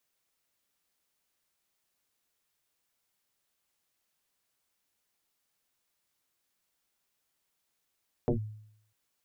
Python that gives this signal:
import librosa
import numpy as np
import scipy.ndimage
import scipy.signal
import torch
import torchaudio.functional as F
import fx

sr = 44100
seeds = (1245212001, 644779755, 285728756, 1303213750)

y = fx.fm2(sr, length_s=0.65, level_db=-21.5, carrier_hz=107.0, ratio=1.14, index=4.6, index_s=0.11, decay_s=0.71, shape='linear')